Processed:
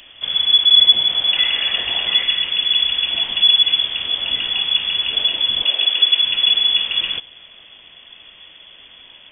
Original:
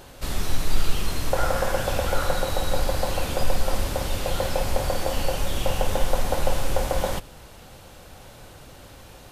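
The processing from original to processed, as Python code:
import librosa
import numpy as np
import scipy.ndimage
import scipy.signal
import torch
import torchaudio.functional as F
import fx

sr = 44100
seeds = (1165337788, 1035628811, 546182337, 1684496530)

y = fx.freq_invert(x, sr, carrier_hz=3400)
y = fx.peak_eq(y, sr, hz=630.0, db=5.5, octaves=1.8, at=(1.09, 2.23))
y = fx.highpass(y, sr, hz=280.0, slope=24, at=(5.63, 6.2))
y = y * 10.0 ** (1.0 / 20.0)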